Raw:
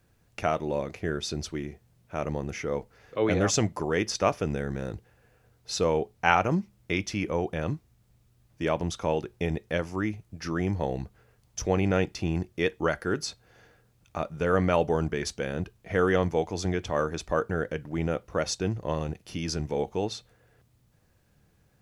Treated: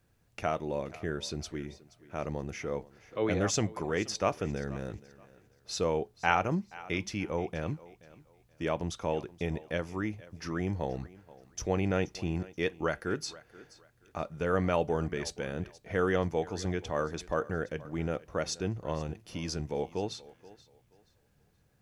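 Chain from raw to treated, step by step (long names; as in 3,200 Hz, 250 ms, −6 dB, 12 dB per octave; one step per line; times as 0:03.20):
feedback echo with a high-pass in the loop 478 ms, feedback 27%, high-pass 180 Hz, level −19 dB
level −4.5 dB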